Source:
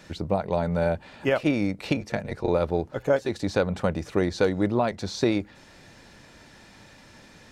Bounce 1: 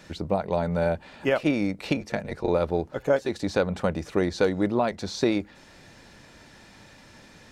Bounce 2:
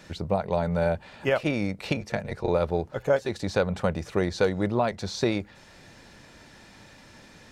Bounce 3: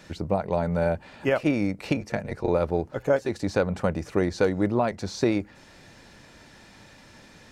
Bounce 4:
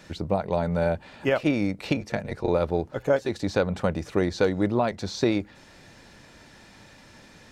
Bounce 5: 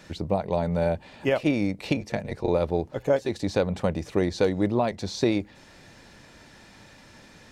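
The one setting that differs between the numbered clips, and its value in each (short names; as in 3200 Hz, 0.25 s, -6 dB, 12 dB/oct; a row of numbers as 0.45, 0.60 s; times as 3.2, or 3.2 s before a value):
dynamic EQ, frequency: 110, 290, 3600, 9700, 1400 Hz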